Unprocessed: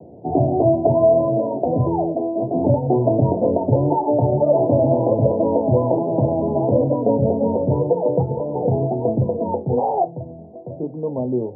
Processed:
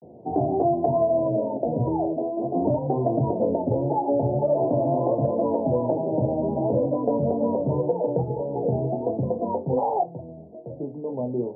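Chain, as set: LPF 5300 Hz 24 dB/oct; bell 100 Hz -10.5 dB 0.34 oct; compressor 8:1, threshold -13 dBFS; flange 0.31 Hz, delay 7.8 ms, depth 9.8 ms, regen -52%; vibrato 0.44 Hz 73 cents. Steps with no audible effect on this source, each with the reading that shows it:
LPF 5300 Hz: input band ends at 1000 Hz

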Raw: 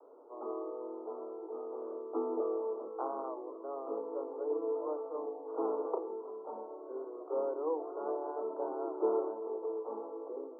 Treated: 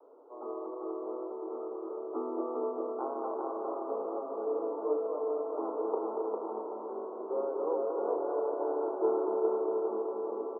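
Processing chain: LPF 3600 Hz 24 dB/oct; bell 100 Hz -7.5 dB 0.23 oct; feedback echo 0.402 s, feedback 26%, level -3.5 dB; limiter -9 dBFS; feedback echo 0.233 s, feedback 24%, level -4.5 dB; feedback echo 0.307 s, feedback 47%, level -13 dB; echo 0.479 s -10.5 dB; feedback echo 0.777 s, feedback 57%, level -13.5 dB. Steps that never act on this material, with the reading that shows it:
LPF 3600 Hz: input band ends at 1300 Hz; bell 100 Hz: input band starts at 210 Hz; limiter -9 dBFS: input peak -19.0 dBFS

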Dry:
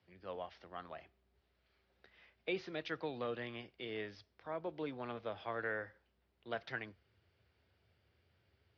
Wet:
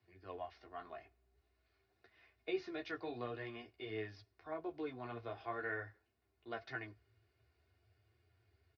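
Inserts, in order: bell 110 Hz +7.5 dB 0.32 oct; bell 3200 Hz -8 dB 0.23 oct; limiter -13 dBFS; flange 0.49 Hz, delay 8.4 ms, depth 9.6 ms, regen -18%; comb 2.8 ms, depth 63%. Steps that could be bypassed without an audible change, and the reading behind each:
limiter -13 dBFS: input peak -26.0 dBFS

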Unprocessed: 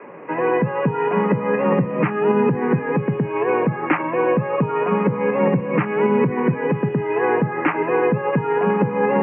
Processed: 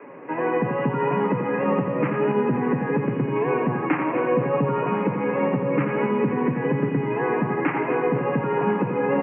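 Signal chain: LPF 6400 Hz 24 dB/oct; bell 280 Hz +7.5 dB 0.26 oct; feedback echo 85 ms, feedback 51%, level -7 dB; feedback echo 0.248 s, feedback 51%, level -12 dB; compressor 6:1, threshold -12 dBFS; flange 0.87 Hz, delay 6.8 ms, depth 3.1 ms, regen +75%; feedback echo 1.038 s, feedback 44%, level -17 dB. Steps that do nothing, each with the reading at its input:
LPF 6400 Hz: input band ends at 2600 Hz

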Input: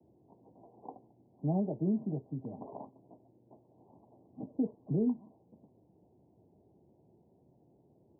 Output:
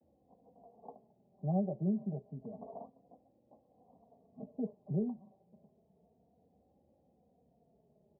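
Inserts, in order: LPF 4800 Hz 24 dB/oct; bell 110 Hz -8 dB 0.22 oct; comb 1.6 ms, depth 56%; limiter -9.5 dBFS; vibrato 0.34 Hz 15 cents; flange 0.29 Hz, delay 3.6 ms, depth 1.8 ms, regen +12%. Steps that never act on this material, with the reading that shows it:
LPF 4800 Hz: input band ends at 810 Hz; limiter -9.5 dBFS: input peak -21.5 dBFS

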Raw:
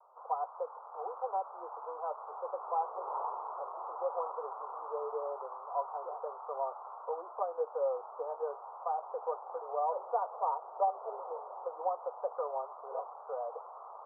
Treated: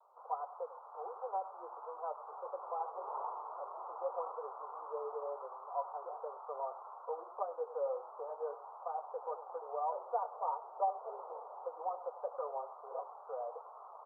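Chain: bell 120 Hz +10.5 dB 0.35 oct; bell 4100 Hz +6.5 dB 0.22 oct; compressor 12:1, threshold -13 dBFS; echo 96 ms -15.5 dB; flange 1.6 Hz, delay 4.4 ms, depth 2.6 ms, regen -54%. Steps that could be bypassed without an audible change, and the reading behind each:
bell 120 Hz: input band starts at 340 Hz; bell 4100 Hz: input band ends at 1400 Hz; compressor, threshold -13 dBFS: input peak -20.0 dBFS

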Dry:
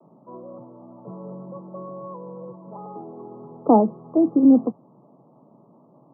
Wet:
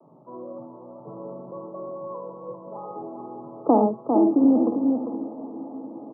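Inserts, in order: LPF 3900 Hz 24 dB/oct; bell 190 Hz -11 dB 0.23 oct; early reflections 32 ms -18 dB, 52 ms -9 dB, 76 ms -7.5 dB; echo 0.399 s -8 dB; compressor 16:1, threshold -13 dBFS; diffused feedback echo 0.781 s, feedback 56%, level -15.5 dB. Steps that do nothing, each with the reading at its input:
LPF 3900 Hz: input band ends at 1100 Hz

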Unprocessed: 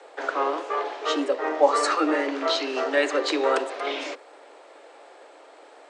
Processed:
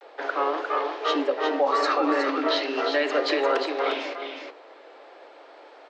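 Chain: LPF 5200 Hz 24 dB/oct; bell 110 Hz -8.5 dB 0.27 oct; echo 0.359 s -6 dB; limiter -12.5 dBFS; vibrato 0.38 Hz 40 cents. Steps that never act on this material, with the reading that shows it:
bell 110 Hz: input band starts at 240 Hz

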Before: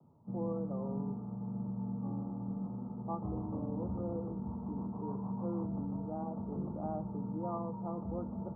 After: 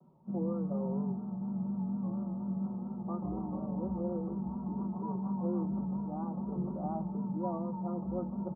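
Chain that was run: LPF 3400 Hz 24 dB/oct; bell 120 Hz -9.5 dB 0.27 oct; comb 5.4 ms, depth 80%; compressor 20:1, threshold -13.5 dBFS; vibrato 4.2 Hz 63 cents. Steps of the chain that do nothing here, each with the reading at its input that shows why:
LPF 3400 Hz: input band ends at 1200 Hz; compressor, threshold -13.5 dBFS: input peak -23.0 dBFS

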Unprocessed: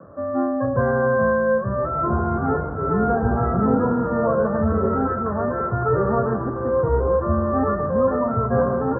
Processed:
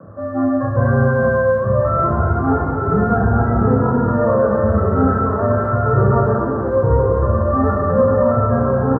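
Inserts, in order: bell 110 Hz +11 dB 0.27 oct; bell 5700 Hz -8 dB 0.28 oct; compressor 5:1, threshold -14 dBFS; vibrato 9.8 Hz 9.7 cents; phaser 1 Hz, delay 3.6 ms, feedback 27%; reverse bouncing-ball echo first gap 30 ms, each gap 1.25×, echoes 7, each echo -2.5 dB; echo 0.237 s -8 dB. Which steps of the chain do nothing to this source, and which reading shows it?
bell 5700 Hz: input band ends at 1600 Hz

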